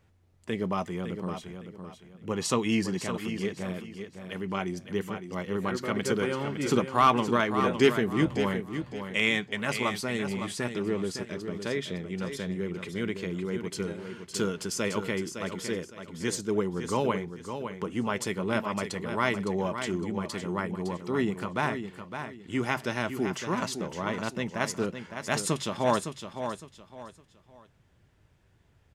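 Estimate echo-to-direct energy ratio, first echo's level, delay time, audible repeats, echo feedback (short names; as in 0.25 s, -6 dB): -8.0 dB, -8.5 dB, 0.56 s, 3, 29%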